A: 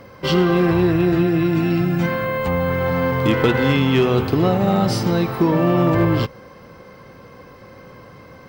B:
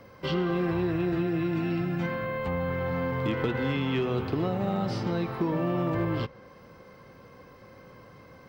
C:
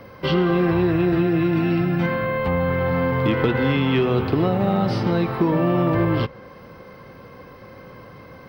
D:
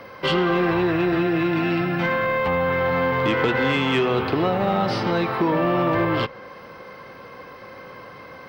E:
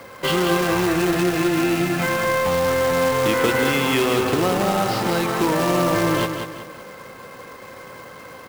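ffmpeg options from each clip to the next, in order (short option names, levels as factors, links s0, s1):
-filter_complex "[0:a]acrossover=split=350|4700[s0][s1][s2];[s0]acompressor=threshold=0.112:ratio=4[s3];[s1]acompressor=threshold=0.0891:ratio=4[s4];[s2]acompressor=threshold=0.00178:ratio=4[s5];[s3][s4][s5]amix=inputs=3:normalize=0,volume=0.376"
-af "equalizer=f=7200:t=o:w=0.44:g=-14,volume=2.66"
-filter_complex "[0:a]asplit=2[s0][s1];[s1]highpass=f=720:p=1,volume=4.47,asoftclip=type=tanh:threshold=0.447[s2];[s0][s2]amix=inputs=2:normalize=0,lowpass=f=5900:p=1,volume=0.501,volume=0.75"
-af "acrusher=bits=2:mode=log:mix=0:aa=0.000001,aecho=1:1:187|374|561|748|935:0.447|0.174|0.0679|0.0265|0.0103"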